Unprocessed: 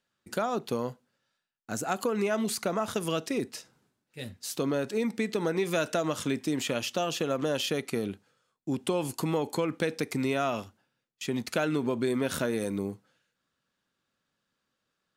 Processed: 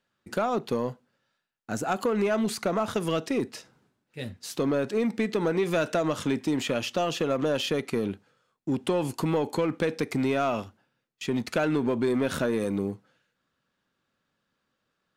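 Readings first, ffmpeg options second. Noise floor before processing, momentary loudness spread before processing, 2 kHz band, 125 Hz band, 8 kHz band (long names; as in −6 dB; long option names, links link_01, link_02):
−82 dBFS, 10 LU, +1.5 dB, +3.0 dB, −2.5 dB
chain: -filter_complex "[0:a]highshelf=frequency=4900:gain=-9.5,asplit=2[link_01][link_02];[link_02]asoftclip=type=hard:threshold=-28.5dB,volume=-4dB[link_03];[link_01][link_03]amix=inputs=2:normalize=0"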